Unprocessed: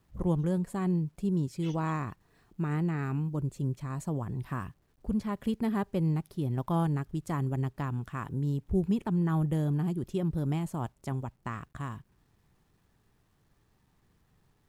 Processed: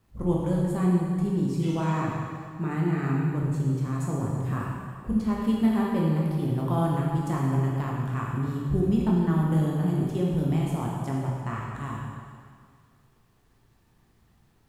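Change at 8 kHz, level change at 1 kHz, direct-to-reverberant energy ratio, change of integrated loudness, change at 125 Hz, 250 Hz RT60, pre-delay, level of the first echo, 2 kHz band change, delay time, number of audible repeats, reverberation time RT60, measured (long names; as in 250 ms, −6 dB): can't be measured, +5.5 dB, −4.0 dB, +5.0 dB, +5.0 dB, 2.1 s, 7 ms, no echo audible, +5.0 dB, no echo audible, no echo audible, 2.0 s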